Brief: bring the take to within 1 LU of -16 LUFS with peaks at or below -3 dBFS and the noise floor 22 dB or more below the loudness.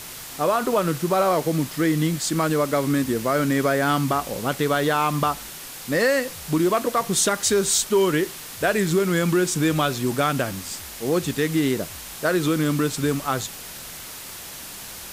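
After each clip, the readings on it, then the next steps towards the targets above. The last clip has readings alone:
noise floor -38 dBFS; noise floor target -45 dBFS; loudness -22.5 LUFS; peak -9.5 dBFS; loudness target -16.0 LUFS
-> denoiser 7 dB, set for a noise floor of -38 dBFS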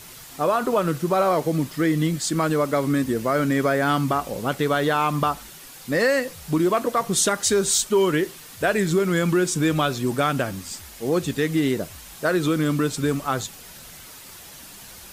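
noise floor -43 dBFS; noise floor target -45 dBFS
-> denoiser 6 dB, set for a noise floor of -43 dBFS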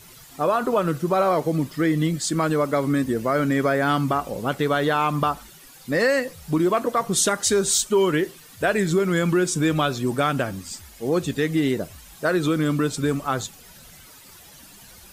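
noise floor -47 dBFS; loudness -22.5 LUFS; peak -10.0 dBFS; loudness target -16.0 LUFS
-> gain +6.5 dB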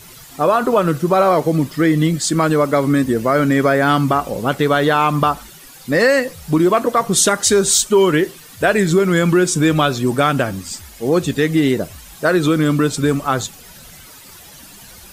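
loudness -16.0 LUFS; peak -3.5 dBFS; noise floor -41 dBFS

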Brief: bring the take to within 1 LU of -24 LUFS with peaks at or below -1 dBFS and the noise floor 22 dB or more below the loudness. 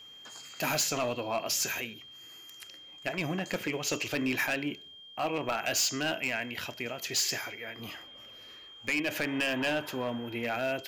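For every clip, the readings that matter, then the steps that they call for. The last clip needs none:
clipped 1.0%; flat tops at -23.5 dBFS; steady tone 3200 Hz; tone level -48 dBFS; loudness -31.5 LUFS; peak -23.5 dBFS; loudness target -24.0 LUFS
-> clip repair -23.5 dBFS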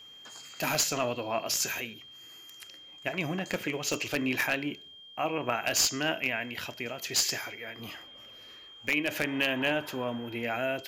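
clipped 0.0%; steady tone 3200 Hz; tone level -48 dBFS
-> notch 3200 Hz, Q 30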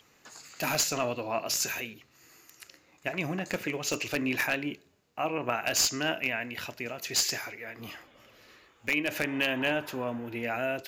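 steady tone none; loudness -30.0 LUFS; peak -14.0 dBFS; loudness target -24.0 LUFS
-> gain +6 dB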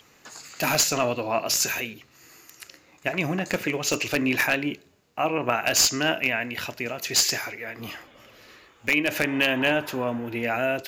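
loudness -24.0 LUFS; peak -8.0 dBFS; noise floor -58 dBFS

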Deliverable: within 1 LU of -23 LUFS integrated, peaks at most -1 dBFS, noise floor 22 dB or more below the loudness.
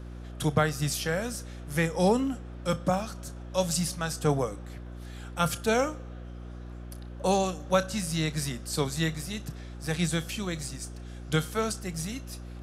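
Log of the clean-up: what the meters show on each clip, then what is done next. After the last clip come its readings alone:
hum 60 Hz; harmonics up to 360 Hz; hum level -39 dBFS; loudness -29.5 LUFS; peak -9.5 dBFS; loudness target -23.0 LUFS
-> de-hum 60 Hz, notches 6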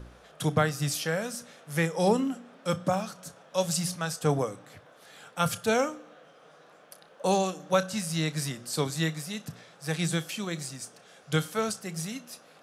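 hum none; loudness -30.0 LUFS; peak -10.0 dBFS; loudness target -23.0 LUFS
-> gain +7 dB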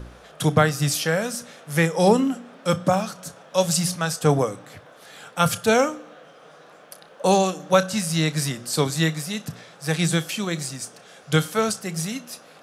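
loudness -23.0 LUFS; peak -3.0 dBFS; noise floor -49 dBFS

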